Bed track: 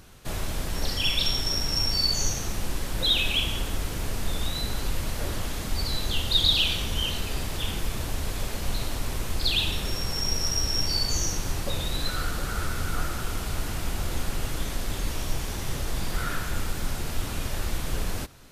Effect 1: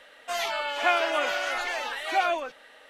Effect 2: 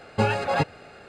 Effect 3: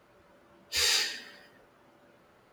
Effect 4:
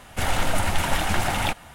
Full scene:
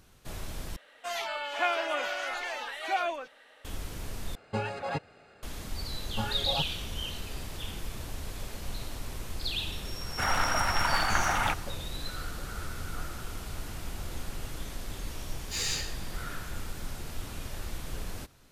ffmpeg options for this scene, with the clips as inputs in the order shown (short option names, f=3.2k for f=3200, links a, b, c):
-filter_complex "[2:a]asplit=2[a][b];[0:a]volume=-8.5dB[c];[b]asplit=2[d][e];[e]afreqshift=2.3[f];[d][f]amix=inputs=2:normalize=1[g];[4:a]equalizer=f=1.3k:w=1:g=13[h];[3:a]equalizer=f=6.9k:w=4:g=6.5[i];[c]asplit=3[j][k][l];[j]atrim=end=0.764[m];[1:a]atrim=end=2.89,asetpts=PTS-STARTPTS,volume=-5dB[n];[k]atrim=start=3.646:end=4.354[o];[a]atrim=end=1.08,asetpts=PTS-STARTPTS,volume=-10dB[p];[l]atrim=start=5.426[q];[g]atrim=end=1.08,asetpts=PTS-STARTPTS,volume=-9dB,afade=t=in:d=0.004:c=hsin,afade=t=out:st=1.076:d=0.004:c=hsin,adelay=5990[r];[h]atrim=end=1.74,asetpts=PTS-STARTPTS,volume=-10dB,afade=t=in:d=0.004:c=hsin,afade=t=out:st=1.736:d=0.004:c=hsin,adelay=10010[s];[i]atrim=end=2.52,asetpts=PTS-STARTPTS,volume=-7.5dB,afade=t=in:d=0.004:c=hsin,afade=t=out:st=2.516:d=0.004:c=hsin,adelay=14780[t];[m][n]acrossfade=d=0.004:c1=hsin:c2=hsin[u];[u][o]acrossfade=d=0.004:c1=hsin:c2=hsin[v];[v][p]acrossfade=d=0.004:c1=hsin:c2=hsin[w];[w][q]acrossfade=d=0.004:c1=hsin:c2=hsin[x];[x][r][s][t]amix=inputs=4:normalize=0"